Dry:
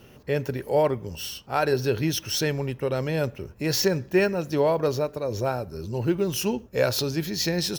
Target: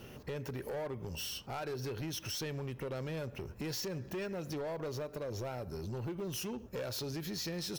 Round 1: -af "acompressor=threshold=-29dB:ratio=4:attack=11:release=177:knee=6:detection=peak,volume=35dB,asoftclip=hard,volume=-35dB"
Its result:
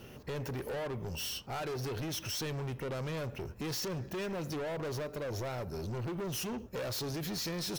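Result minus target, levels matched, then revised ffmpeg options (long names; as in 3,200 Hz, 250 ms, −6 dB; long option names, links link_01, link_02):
downward compressor: peak gain reduction −6.5 dB
-af "acompressor=threshold=-37.5dB:ratio=4:attack=11:release=177:knee=6:detection=peak,volume=35dB,asoftclip=hard,volume=-35dB"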